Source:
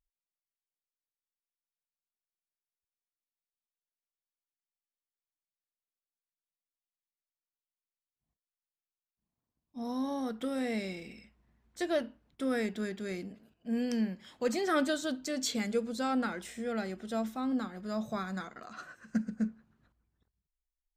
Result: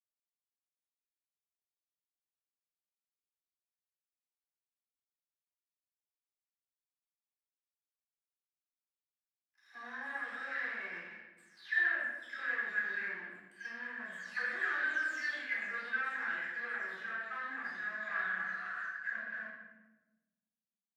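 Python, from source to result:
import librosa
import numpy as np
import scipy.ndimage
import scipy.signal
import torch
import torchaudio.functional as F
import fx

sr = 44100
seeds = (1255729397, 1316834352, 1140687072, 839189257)

y = fx.spec_delay(x, sr, highs='early', ms=400)
y = fx.leveller(y, sr, passes=3)
y = fx.level_steps(y, sr, step_db=11)
y = fx.leveller(y, sr, passes=3)
y = fx.bandpass_q(y, sr, hz=1700.0, q=15.0)
y = fx.room_shoebox(y, sr, seeds[0], volume_m3=530.0, walls='mixed', distance_m=3.8)
y = y * librosa.db_to_amplitude(-1.5)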